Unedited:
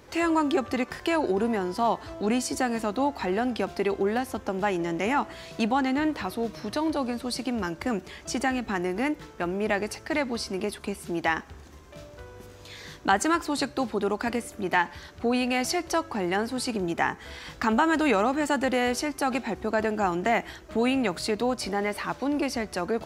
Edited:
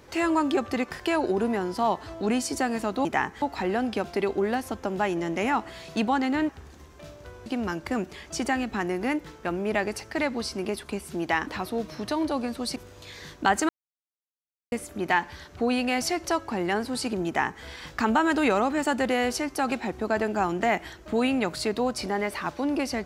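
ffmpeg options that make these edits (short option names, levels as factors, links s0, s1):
-filter_complex "[0:a]asplit=9[s0][s1][s2][s3][s4][s5][s6][s7][s8];[s0]atrim=end=3.052[s9];[s1]atrim=start=16.898:end=17.272[s10];[s2]atrim=start=3.048:end=6.122[s11];[s3]atrim=start=11.418:end=12.392[s12];[s4]atrim=start=7.408:end=11.422[s13];[s5]atrim=start=6.118:end=7.412[s14];[s6]atrim=start=12.388:end=13.32,asetpts=PTS-STARTPTS,afade=t=out:st=0.928:d=0.004:c=hsin[s15];[s7]atrim=start=13.32:end=14.35,asetpts=PTS-STARTPTS,volume=0[s16];[s8]atrim=start=14.35,asetpts=PTS-STARTPTS,afade=t=in:d=0.004:c=hsin[s17];[s9][s10]acrossfade=d=0.004:c1=hsin:c2=hsin[s18];[s18][s11]acrossfade=d=0.004:c1=hsin:c2=hsin[s19];[s19][s12]acrossfade=d=0.004:c1=hsin:c2=hsin[s20];[s20][s13]acrossfade=d=0.004:c1=hsin:c2=hsin[s21];[s21][s14]acrossfade=d=0.004:c1=hsin:c2=hsin[s22];[s15][s16][s17]concat=n=3:v=0:a=1[s23];[s22][s23]acrossfade=d=0.004:c1=hsin:c2=hsin"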